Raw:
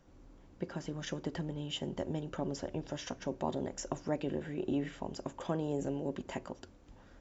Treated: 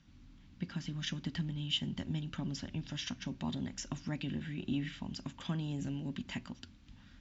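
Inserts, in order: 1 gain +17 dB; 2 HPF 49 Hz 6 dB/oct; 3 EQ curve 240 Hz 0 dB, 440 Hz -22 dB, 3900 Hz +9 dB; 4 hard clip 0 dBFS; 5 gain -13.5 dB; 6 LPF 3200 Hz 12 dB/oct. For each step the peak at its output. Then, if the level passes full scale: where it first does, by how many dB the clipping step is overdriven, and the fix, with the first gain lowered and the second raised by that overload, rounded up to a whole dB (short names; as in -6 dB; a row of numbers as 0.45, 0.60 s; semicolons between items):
-2.5, -2.5, -2.5, -2.5, -16.0, -20.5 dBFS; no overload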